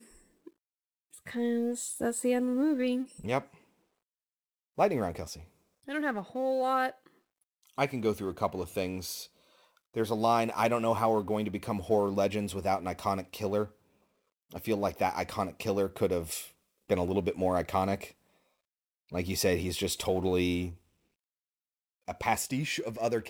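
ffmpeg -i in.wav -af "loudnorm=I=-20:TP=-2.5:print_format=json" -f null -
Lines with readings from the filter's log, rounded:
"input_i" : "-31.2",
"input_tp" : "-13.1",
"input_lra" : "3.9",
"input_thresh" : "-42.0",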